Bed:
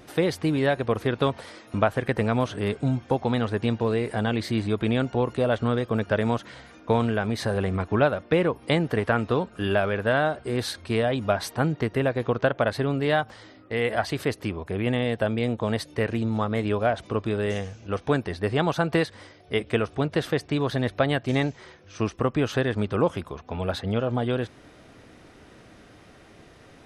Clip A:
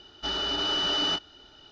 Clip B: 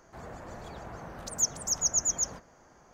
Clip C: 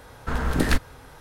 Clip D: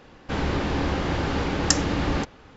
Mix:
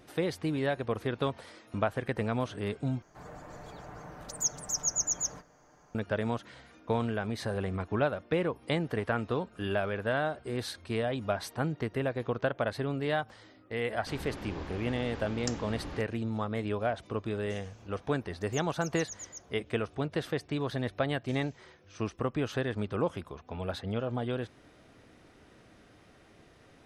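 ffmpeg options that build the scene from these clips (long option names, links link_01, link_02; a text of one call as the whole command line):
ffmpeg -i bed.wav -i cue0.wav -i cue1.wav -i cue2.wav -i cue3.wav -filter_complex "[2:a]asplit=2[link_01][link_02];[0:a]volume=-7.5dB[link_03];[link_01]aecho=1:1:6.7:0.42[link_04];[link_03]asplit=2[link_05][link_06];[link_05]atrim=end=3.024[link_07];[link_04]atrim=end=2.93,asetpts=PTS-STARTPTS,volume=-3.5dB[link_08];[link_06]atrim=start=5.946[link_09];[4:a]atrim=end=2.56,asetpts=PTS-STARTPTS,volume=-16.5dB,afade=type=in:duration=0.004:curve=hsin,afade=type=out:start_time=2.556:duration=0.004:curve=hsin,adelay=13770[link_10];[link_02]atrim=end=2.93,asetpts=PTS-STARTPTS,volume=-17dB,afade=type=in:duration=0.004:curve=hsin,afade=type=out:start_time=2.926:duration=0.004:curve=hsin,adelay=17140[link_11];[link_07][link_08]acrossfade=duration=0.004:curve1=hsin:curve2=hsin[link_12];[link_12][link_09]acrossfade=duration=0.004:curve1=hsin:curve2=hsin[link_13];[link_13][link_10][link_11]amix=inputs=3:normalize=0" out.wav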